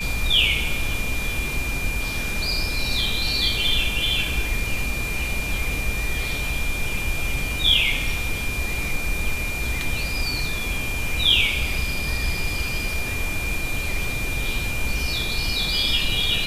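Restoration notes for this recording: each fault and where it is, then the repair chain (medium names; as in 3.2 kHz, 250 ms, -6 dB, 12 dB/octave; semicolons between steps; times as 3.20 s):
whine 2.4 kHz -28 dBFS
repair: band-stop 2.4 kHz, Q 30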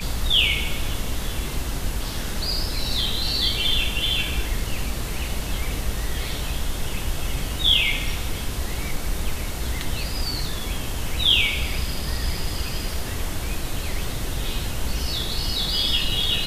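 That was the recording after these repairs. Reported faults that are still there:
nothing left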